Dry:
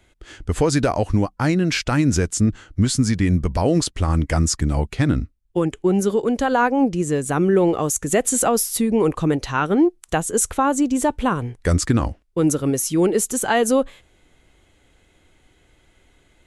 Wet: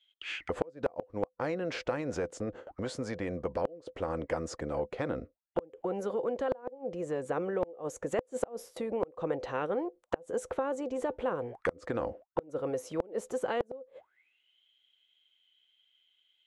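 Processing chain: auto-wah 510–3300 Hz, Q 19, down, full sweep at -21.5 dBFS; gate with hold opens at -58 dBFS; in parallel at -0.5 dB: compression 6:1, threshold -40 dBFS, peak gain reduction 19.5 dB; on the sum: inverted gate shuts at -21 dBFS, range -31 dB; spectrum-flattening compressor 2:1; trim +8.5 dB

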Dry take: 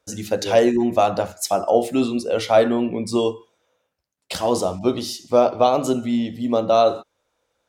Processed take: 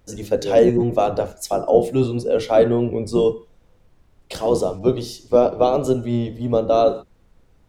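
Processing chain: octave divider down 1 oct, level +1 dB; peaking EQ 440 Hz +10 dB 0.84 oct; added noise brown -48 dBFS; trim -5 dB

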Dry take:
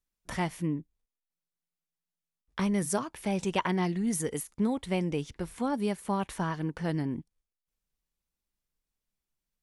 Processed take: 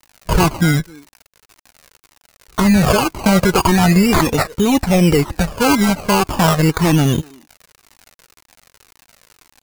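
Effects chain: companding laws mixed up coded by A; speakerphone echo 250 ms, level -28 dB; decimation with a swept rate 19×, swing 60% 0.38 Hz; 0.71–2.77 s: bass shelf 160 Hz +4.5 dB; crackle 100 per s -52 dBFS; peaking EQ 3.3 kHz -5.5 dB 0.2 oct; loudness maximiser +27.5 dB; Shepard-style flanger falling 1.9 Hz; trim +1.5 dB

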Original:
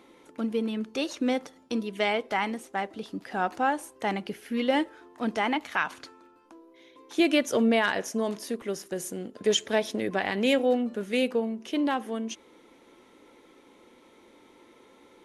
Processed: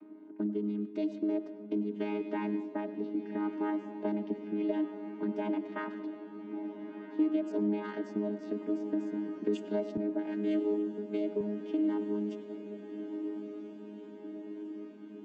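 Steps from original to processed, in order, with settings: vocoder on a held chord bare fifth, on G#3; level-controlled noise filter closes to 2 kHz, open at -22.5 dBFS; peaking EQ 280 Hz +13 dB 0.65 oct; compression 3:1, threshold -30 dBFS, peak gain reduction 18.5 dB; echo that smears into a reverb 1348 ms, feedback 70%, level -11 dB; dynamic bell 550 Hz, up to +5 dB, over -45 dBFS, Q 1.6; on a send at -12 dB: reverberation RT60 1.2 s, pre-delay 92 ms; 9.97–11.41 s: on the sum: three bands expanded up and down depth 70%; trim -3.5 dB

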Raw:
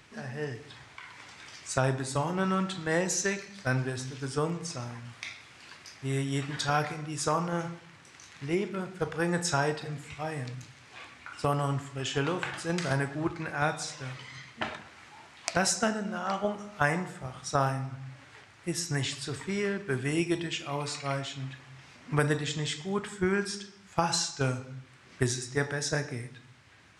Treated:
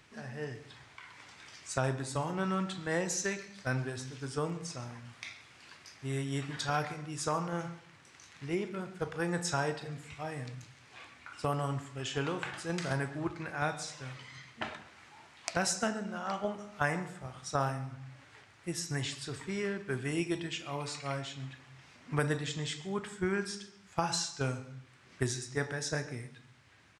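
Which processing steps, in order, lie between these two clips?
delay 138 ms -21 dB; trim -4.5 dB

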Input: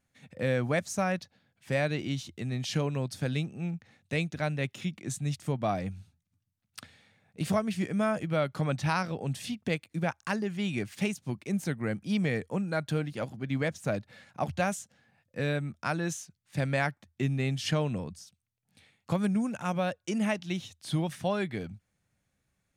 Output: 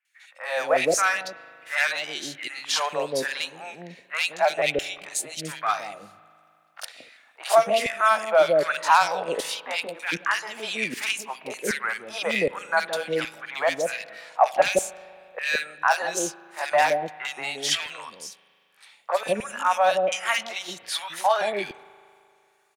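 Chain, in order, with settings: sawtooth pitch modulation +1.5 st, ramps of 890 ms; level rider gain up to 4.5 dB; overload inside the chain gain 17 dB; LFO high-pass saw down 1.3 Hz 460–2600 Hz; three bands offset in time mids, highs, lows 50/170 ms, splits 570/2000 Hz; spring tank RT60 2.5 s, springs 38 ms, chirp 75 ms, DRR 18 dB; trim +7 dB

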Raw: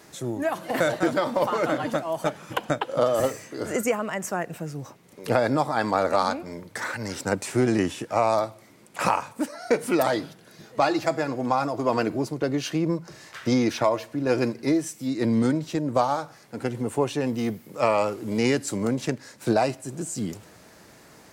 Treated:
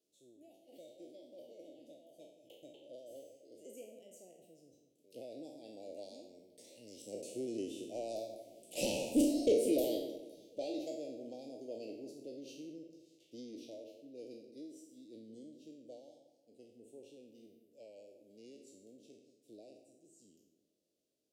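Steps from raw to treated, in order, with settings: spectral sustain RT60 0.71 s; Doppler pass-by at 9.14 s, 9 m/s, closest 1.5 m; resonant low shelf 210 Hz -9.5 dB, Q 1.5; saturation -23 dBFS, distortion -10 dB; elliptic band-stop 590–2900 Hz, stop band 60 dB; on a send: feedback echo behind a low-pass 180 ms, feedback 36%, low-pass 2 kHz, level -10.5 dB; on the sum: trim +1.5 dB

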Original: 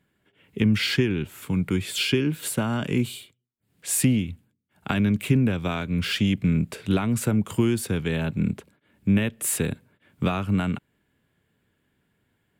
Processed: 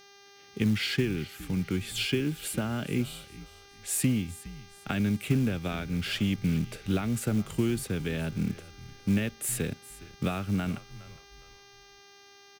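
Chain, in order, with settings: mains buzz 400 Hz, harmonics 16, -49 dBFS -2 dB/octave; peaking EQ 1 kHz -9 dB 0.23 oct; frequency-shifting echo 412 ms, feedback 34%, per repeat -74 Hz, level -17.5 dB; companded quantiser 6-bit; trim -5.5 dB

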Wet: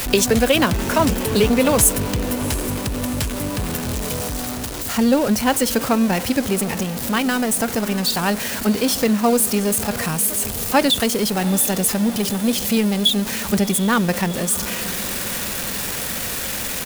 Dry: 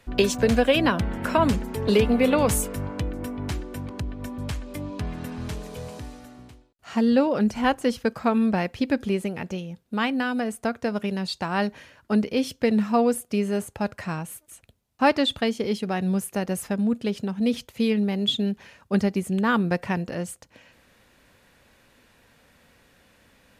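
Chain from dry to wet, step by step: jump at every zero crossing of -27 dBFS; treble shelf 5.4 kHz +12 dB; tempo 1.4×; echo that smears into a reverb 721 ms, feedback 61%, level -15 dB; trim +2.5 dB

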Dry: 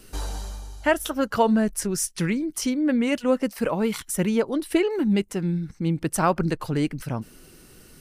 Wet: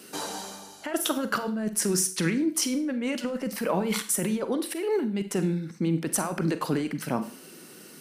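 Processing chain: high-pass 180 Hz 24 dB/octave; compressor with a negative ratio -27 dBFS, ratio -1; Schroeder reverb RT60 0.43 s, combs from 33 ms, DRR 10 dB

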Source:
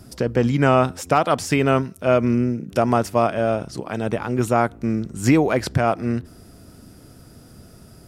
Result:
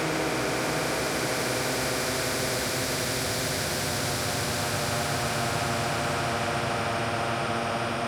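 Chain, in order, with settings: self-modulated delay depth 0.052 ms; Paulstretch 17×, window 0.50 s, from 5.47 s; spectrum-flattening compressor 2:1; trim -8.5 dB

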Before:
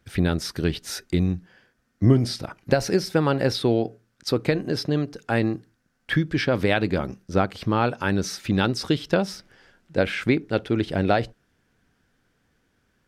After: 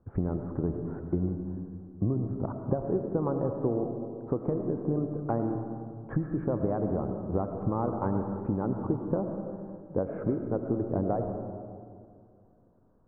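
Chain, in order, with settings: elliptic low-pass 1.1 kHz, stop band 80 dB; compression, threshold -28 dBFS, peak gain reduction 15 dB; algorithmic reverb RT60 2.3 s, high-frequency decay 0.3×, pre-delay 55 ms, DRR 5.5 dB; trim +2 dB

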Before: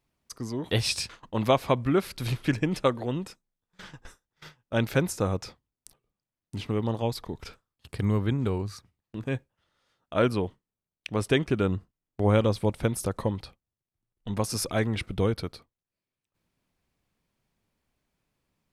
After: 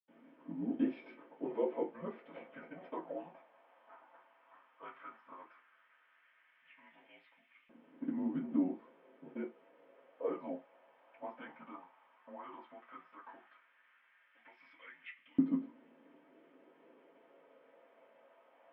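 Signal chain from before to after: level-controlled noise filter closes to 1.2 kHz, open at -23 dBFS; peak limiter -20 dBFS, peak gain reduction 11 dB; 4.88–6.66 s: ring modulator 41 Hz; word length cut 8-bit, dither triangular; mistuned SSB -180 Hz 310–3500 Hz; reverberation, pre-delay 76 ms; LFO high-pass saw up 0.13 Hz 250–2500 Hz; trim +11.5 dB

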